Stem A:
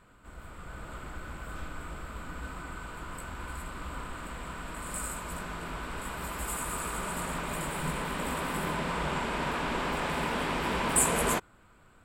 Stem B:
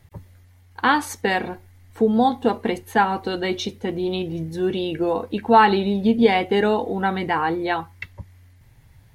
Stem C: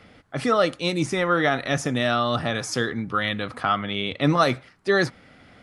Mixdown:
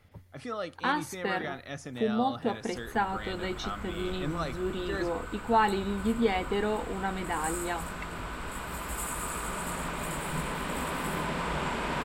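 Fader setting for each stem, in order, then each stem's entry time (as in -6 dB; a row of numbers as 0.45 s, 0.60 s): 0.0 dB, -10.5 dB, -15.5 dB; 2.50 s, 0.00 s, 0.00 s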